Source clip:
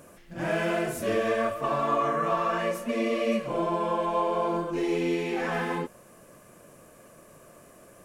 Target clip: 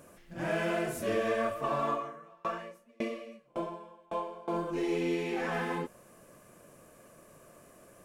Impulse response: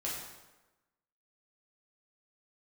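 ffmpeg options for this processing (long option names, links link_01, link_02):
-filter_complex "[0:a]asettb=1/sr,asplit=3[link_01][link_02][link_03];[link_01]atrim=end=1.894[link_04];[link_02]atrim=start=1.89:end=4.48,asetpts=PTS-STARTPTS,afade=type=in:duration=0.004:curve=qsin,afade=type=out:start_time=2.586:duration=0.004:curve=qsin,aeval=exprs='val(0)*pow(10,-34*if(lt(mod(1.8*n/s,1),2*abs(1.8)/1000),1-mod(1.8*n/s,1)/(2*abs(1.8)/1000),(mod(1.8*n/s,1)-2*abs(1.8)/1000)/(1-2*abs(1.8)/1000))/20)':channel_layout=same[link_05];[link_03]atrim=start=4.476[link_06];[link_04][link_05]acrossfade=duration=0.004:curve1=hsin:curve2=qsin[link_07];[link_07][link_06]acrossfade=duration=0.004:curve1=qsin:curve2=hsin,volume=-4dB"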